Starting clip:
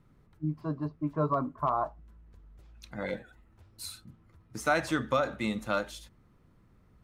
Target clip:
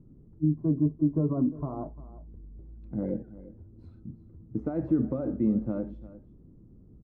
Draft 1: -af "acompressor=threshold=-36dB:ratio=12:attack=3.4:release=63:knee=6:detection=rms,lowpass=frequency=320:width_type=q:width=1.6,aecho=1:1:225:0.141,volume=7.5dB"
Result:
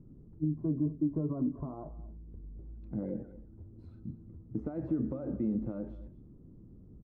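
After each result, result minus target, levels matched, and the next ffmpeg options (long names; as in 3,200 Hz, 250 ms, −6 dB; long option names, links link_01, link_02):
downward compressor: peak gain reduction +8 dB; echo 123 ms early
-af "acompressor=threshold=-27.5dB:ratio=12:attack=3.4:release=63:knee=6:detection=rms,lowpass=frequency=320:width_type=q:width=1.6,aecho=1:1:225:0.141,volume=7.5dB"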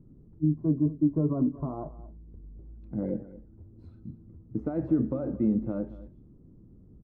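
echo 123 ms early
-af "acompressor=threshold=-27.5dB:ratio=12:attack=3.4:release=63:knee=6:detection=rms,lowpass=frequency=320:width_type=q:width=1.6,aecho=1:1:348:0.141,volume=7.5dB"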